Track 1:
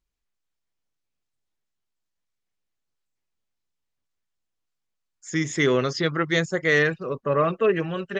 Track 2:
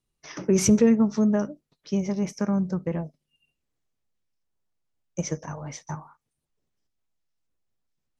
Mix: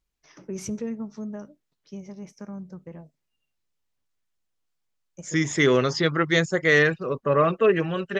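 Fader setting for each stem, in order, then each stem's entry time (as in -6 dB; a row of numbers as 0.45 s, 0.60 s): +1.5 dB, -13.0 dB; 0.00 s, 0.00 s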